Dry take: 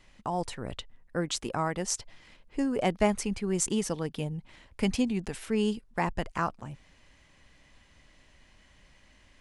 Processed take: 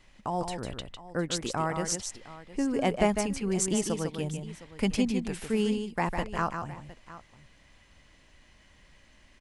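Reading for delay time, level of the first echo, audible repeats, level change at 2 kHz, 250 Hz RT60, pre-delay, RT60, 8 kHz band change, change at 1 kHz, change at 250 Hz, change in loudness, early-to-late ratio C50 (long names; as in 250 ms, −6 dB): 152 ms, −6.5 dB, 2, +1.0 dB, no reverb audible, no reverb audible, no reverb audible, +1.0 dB, +1.0 dB, +1.0 dB, +0.5 dB, no reverb audible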